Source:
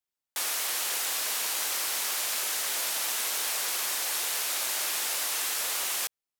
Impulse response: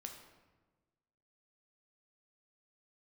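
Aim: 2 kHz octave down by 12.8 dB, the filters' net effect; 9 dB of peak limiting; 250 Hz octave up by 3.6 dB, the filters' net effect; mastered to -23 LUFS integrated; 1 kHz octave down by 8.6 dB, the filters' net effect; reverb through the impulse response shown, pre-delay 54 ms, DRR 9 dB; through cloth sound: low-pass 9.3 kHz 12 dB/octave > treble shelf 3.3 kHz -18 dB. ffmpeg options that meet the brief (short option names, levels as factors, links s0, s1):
-filter_complex "[0:a]equalizer=f=250:t=o:g=6,equalizer=f=1000:t=o:g=-7,equalizer=f=2000:t=o:g=-8,alimiter=level_in=1.5:limit=0.0631:level=0:latency=1,volume=0.668,asplit=2[s0][s1];[1:a]atrim=start_sample=2205,adelay=54[s2];[s1][s2]afir=irnorm=-1:irlink=0,volume=0.562[s3];[s0][s3]amix=inputs=2:normalize=0,lowpass=9300,highshelf=f=3300:g=-18,volume=17.8"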